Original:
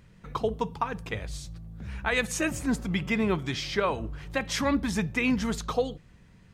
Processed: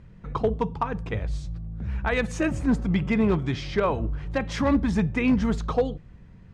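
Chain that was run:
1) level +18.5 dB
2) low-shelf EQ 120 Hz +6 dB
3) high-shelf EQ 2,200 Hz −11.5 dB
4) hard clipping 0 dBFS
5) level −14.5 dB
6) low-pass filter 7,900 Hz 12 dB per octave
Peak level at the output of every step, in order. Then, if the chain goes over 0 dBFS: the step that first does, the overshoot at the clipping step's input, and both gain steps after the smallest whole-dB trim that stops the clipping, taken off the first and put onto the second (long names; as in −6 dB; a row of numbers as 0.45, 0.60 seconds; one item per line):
+5.5, +6.5, +5.5, 0.0, −14.5, −14.5 dBFS
step 1, 5.5 dB
step 1 +12.5 dB, step 5 −8.5 dB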